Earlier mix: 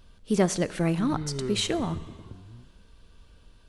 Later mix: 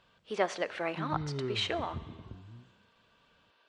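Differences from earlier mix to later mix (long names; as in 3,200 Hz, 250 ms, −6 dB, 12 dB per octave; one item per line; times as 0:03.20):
speech: add flat-topped band-pass 1,400 Hz, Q 0.5
background −3.0 dB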